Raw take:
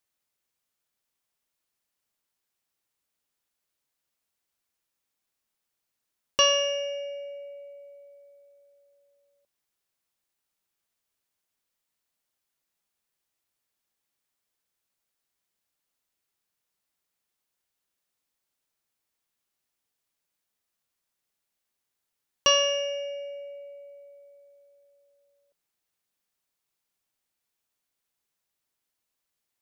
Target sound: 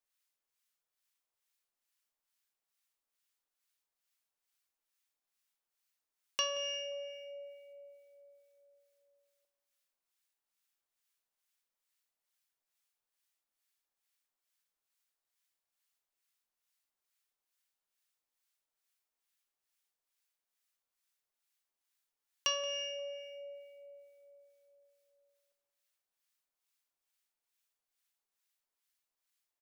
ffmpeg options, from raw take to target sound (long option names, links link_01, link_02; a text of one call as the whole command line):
ffmpeg -i in.wav -filter_complex "[0:a]equalizer=frequency=120:width=0.33:gain=-15,bandreject=frequency=60:width_type=h:width=6,bandreject=frequency=120:width_type=h:width=6,bandreject=frequency=180:width_type=h:width=6,acompressor=threshold=-40dB:ratio=1.5,acrossover=split=1100[link_01][link_02];[link_01]aeval=exprs='val(0)*(1-0.7/2+0.7/2*cos(2*PI*2.3*n/s))':channel_layout=same[link_03];[link_02]aeval=exprs='val(0)*(1-0.7/2-0.7/2*cos(2*PI*2.3*n/s))':channel_layout=same[link_04];[link_03][link_04]amix=inputs=2:normalize=0,asplit=2[link_05][link_06];[link_06]adelay=176,lowpass=frequency=1600:poles=1,volume=-14dB,asplit=2[link_07][link_08];[link_08]adelay=176,lowpass=frequency=1600:poles=1,volume=0.43,asplit=2[link_09][link_10];[link_10]adelay=176,lowpass=frequency=1600:poles=1,volume=0.43,asplit=2[link_11][link_12];[link_12]adelay=176,lowpass=frequency=1600:poles=1,volume=0.43[link_13];[link_05][link_07][link_09][link_11][link_13]amix=inputs=5:normalize=0" out.wav